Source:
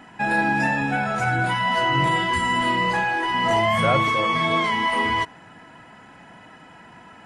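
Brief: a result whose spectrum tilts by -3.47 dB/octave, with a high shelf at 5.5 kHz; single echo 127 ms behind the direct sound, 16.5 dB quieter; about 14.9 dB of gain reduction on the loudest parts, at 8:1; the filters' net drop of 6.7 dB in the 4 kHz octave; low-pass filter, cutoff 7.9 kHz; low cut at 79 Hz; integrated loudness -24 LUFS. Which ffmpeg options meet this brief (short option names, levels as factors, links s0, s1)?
-af "highpass=79,lowpass=7900,equalizer=f=4000:t=o:g=-8,highshelf=f=5500:g=-7,acompressor=threshold=0.0251:ratio=8,aecho=1:1:127:0.15,volume=3.35"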